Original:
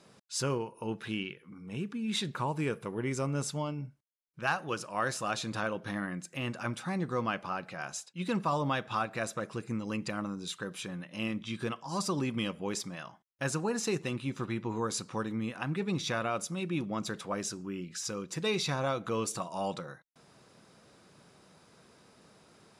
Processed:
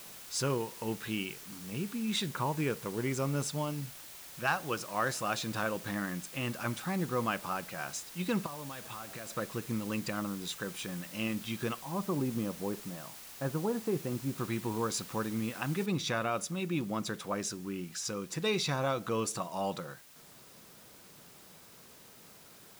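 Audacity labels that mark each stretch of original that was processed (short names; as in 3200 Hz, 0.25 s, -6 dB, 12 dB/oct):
8.460000	9.300000	compressor 8:1, threshold -40 dBFS
11.830000	14.380000	LPF 1000 Hz
15.860000	15.860000	noise floor step -49 dB -57 dB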